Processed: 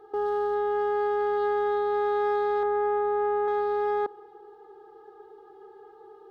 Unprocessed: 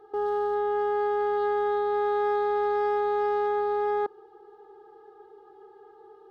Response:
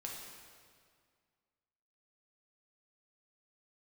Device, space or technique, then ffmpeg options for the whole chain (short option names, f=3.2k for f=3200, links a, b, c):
ducked reverb: -filter_complex "[0:a]asettb=1/sr,asplit=3[a][b][c];[a]atrim=end=2.634[d];[b]atrim=start=2.63:end=3.48,asetpts=PTS-STARTPTS,afade=t=in:d=0.004:c=qsin,afade=t=out:st=0.846:d=0.004:c=qsin,lowpass=1.8k[e];[c]atrim=start=3.476[f];[d][e]acrossfade=d=0.004:c1=hsin:c2=qsin[g];[g][f]acrossfade=d=0.004:c1=qsin:c2=hsin,asplit=3[h][i][j];[1:a]atrim=start_sample=2205[k];[i][k]afir=irnorm=-1:irlink=0[l];[j]apad=whole_len=278006[m];[l][m]sidechaincompress=threshold=-33dB:ratio=8:attack=16:release=1380,volume=-8dB[n];[h][n]amix=inputs=2:normalize=0"